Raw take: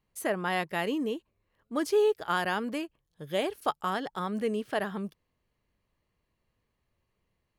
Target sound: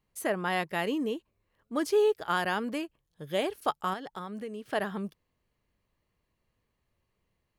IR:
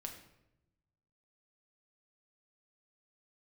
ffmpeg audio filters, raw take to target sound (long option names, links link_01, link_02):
-filter_complex "[0:a]asettb=1/sr,asplit=3[link_01][link_02][link_03];[link_01]atrim=end=3.934[link_04];[link_02]atrim=start=3.93:end=4.66,asetpts=PTS-STARTPTS,afade=type=in:duration=0.004:curve=qsin,afade=type=out:start_time=0.726:duration=0.004:curve=qsin,acompressor=threshold=-36dB:ratio=6[link_05];[link_03]atrim=start=4.656[link_06];[link_04][link_05]acrossfade=duration=0.004:curve1=hsin:curve2=qsin[link_07];[link_07][link_06]acrossfade=duration=0.004:curve1=qsin:curve2=hsin"